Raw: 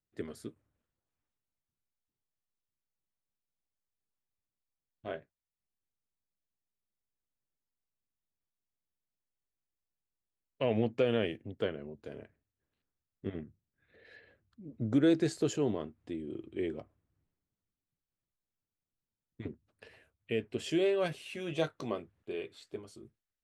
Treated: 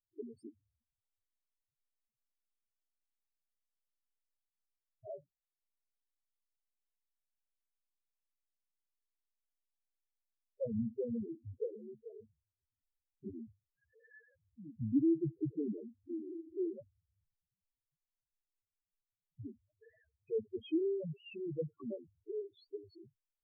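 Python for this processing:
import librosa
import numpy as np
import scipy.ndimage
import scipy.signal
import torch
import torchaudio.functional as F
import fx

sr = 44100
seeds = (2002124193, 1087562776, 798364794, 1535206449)

y = fx.env_lowpass_down(x, sr, base_hz=310.0, full_db=-26.0)
y = fx.spec_topn(y, sr, count=2)
y = F.gain(torch.from_numpy(y), 1.0).numpy()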